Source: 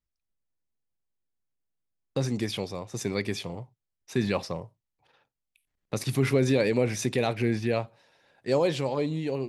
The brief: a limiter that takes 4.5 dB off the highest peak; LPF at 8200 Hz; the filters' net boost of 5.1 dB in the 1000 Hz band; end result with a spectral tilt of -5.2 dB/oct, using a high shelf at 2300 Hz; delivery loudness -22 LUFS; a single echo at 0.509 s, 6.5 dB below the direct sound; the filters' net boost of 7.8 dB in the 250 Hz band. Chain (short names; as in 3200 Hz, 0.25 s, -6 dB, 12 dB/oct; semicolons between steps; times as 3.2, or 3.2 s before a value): LPF 8200 Hz; bell 250 Hz +9 dB; bell 1000 Hz +4.5 dB; high shelf 2300 Hz +8.5 dB; limiter -11 dBFS; echo 0.509 s -6.5 dB; gain +2.5 dB